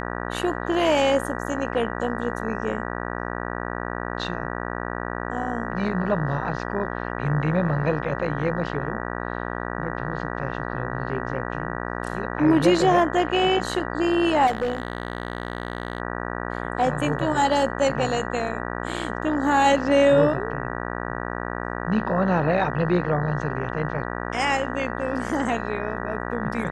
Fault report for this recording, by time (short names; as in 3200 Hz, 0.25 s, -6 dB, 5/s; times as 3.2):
buzz 60 Hz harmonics 32 -30 dBFS
14.46–16 clipped -19.5 dBFS